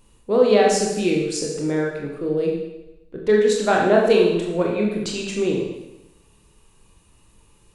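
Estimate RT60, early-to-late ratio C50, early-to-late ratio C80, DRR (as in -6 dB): 0.95 s, 2.5 dB, 5.0 dB, -1.5 dB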